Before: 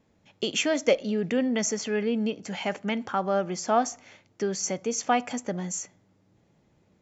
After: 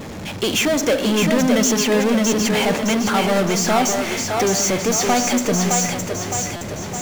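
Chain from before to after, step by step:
power curve on the samples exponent 0.35
echo with a time of its own for lows and highs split 310 Hz, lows 180 ms, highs 613 ms, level −4 dB
buffer that repeats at 0:06.56, samples 256, times 8
level −2.5 dB

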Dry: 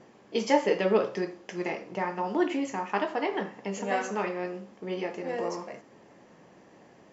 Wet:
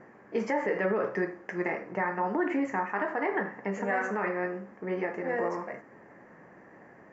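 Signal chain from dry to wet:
high shelf with overshoot 2,500 Hz −11 dB, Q 3
brickwall limiter −20 dBFS, peak gain reduction 10.5 dB
level +1 dB

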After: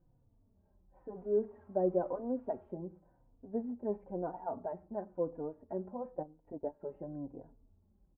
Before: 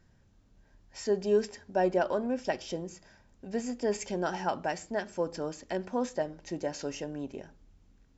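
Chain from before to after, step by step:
0:01.15–0:02.71: spike at every zero crossing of −26.5 dBFS
0:06.17–0:06.82: transient designer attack +3 dB, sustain −11 dB
inverse Chebyshev low-pass filter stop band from 5,300 Hz, stop band 80 dB
barber-pole flanger 3.5 ms −0.97 Hz
level −2.5 dB

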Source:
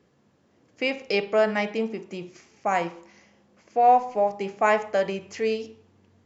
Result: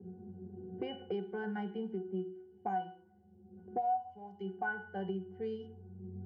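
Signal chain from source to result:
low-pass that shuts in the quiet parts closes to 390 Hz, open at −21 dBFS
dynamic equaliser 1,000 Hz, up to +6 dB, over −34 dBFS, Q 1.9
resonances in every octave F#, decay 0.3 s
multiband upward and downward compressor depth 100%
level +1 dB

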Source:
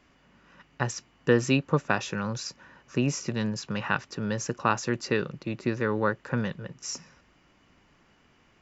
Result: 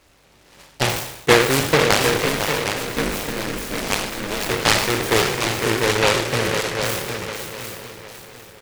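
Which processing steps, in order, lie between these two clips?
peak hold with a decay on every bin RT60 0.84 s
parametric band 650 Hz +12 dB 0.43 octaves
comb filter 2.3 ms, depth 53%
0:02.16–0:04.51: ring modulation 96 Hz
echo machine with several playback heads 251 ms, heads second and third, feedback 42%, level −7 dB
short delay modulated by noise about 1,500 Hz, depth 0.25 ms
level +2.5 dB

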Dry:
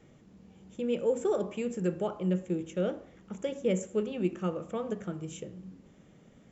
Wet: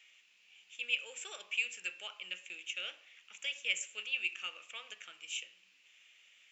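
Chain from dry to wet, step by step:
high-pass with resonance 2,600 Hz, resonance Q 5.5
level +2 dB

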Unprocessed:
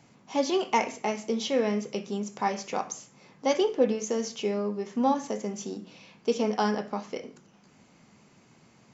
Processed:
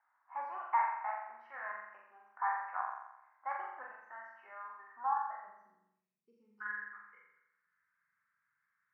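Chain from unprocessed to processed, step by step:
inverse Chebyshev high-pass filter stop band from 490 Hz, stop band 40 dB, from 0:05.46 stop band from 1,800 Hz, from 0:06.60 stop band from 770 Hz
noise reduction from a noise print of the clip's start 8 dB
elliptic low-pass filter 1,700 Hz, stop band 50 dB
flutter between parallel walls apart 7.4 metres, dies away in 0.88 s

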